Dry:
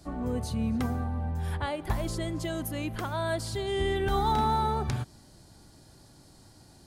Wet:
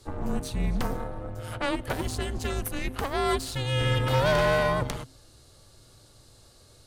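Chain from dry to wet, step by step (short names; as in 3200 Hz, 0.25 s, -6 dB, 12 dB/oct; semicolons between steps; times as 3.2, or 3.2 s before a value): elliptic high-pass 150 Hz; added harmonics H 6 -12 dB, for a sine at -15.5 dBFS; frequency shift -270 Hz; gain +3 dB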